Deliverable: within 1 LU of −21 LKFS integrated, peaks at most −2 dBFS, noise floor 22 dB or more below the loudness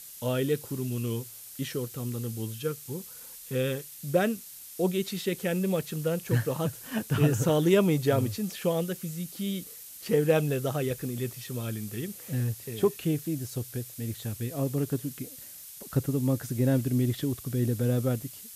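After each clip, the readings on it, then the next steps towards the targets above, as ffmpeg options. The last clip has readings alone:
background noise floor −46 dBFS; target noise floor −52 dBFS; integrated loudness −29.5 LKFS; sample peak −12.5 dBFS; target loudness −21.0 LKFS
→ -af "afftdn=noise_reduction=6:noise_floor=-46"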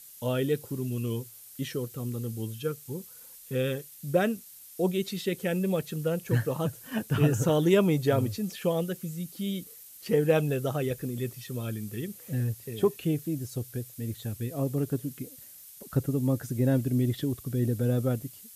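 background noise floor −49 dBFS; target noise floor −52 dBFS
→ -af "afftdn=noise_reduction=6:noise_floor=-49"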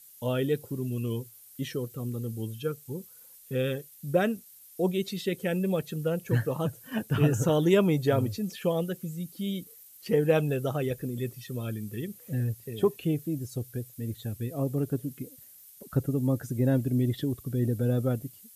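background noise floor −53 dBFS; integrated loudness −29.5 LKFS; sample peak −12.5 dBFS; target loudness −21.0 LKFS
→ -af "volume=8.5dB"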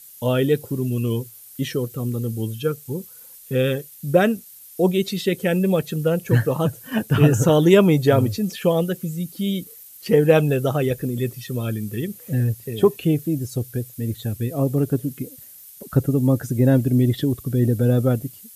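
integrated loudness −21.0 LKFS; sample peak −4.0 dBFS; background noise floor −44 dBFS

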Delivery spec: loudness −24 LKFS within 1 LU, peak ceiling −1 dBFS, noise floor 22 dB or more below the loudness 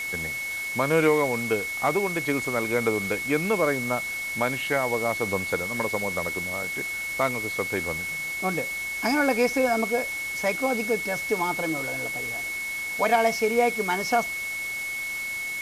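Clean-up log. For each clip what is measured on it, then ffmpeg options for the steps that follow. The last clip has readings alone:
interfering tone 2,200 Hz; level of the tone −29 dBFS; background noise floor −32 dBFS; target noise floor −48 dBFS; integrated loudness −25.5 LKFS; sample peak −10.0 dBFS; target loudness −24.0 LKFS
→ -af "bandreject=frequency=2200:width=30"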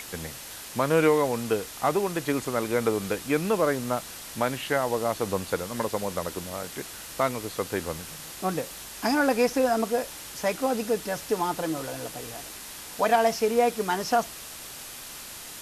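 interfering tone none found; background noise floor −41 dBFS; target noise floor −50 dBFS
→ -af "afftdn=noise_reduction=9:noise_floor=-41"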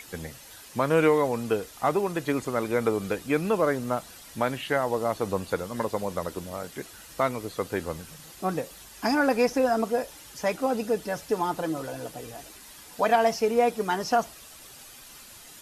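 background noise floor −48 dBFS; target noise floor −49 dBFS
→ -af "afftdn=noise_reduction=6:noise_floor=-48"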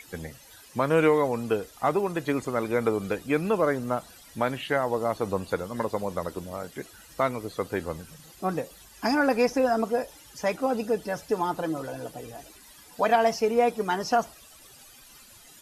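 background noise floor −52 dBFS; integrated loudness −27.0 LKFS; sample peak −11.0 dBFS; target loudness −24.0 LKFS
→ -af "volume=3dB"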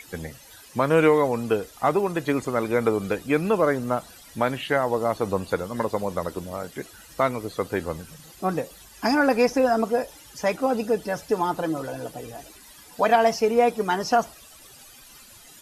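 integrated loudness −24.0 LKFS; sample peak −8.0 dBFS; background noise floor −49 dBFS

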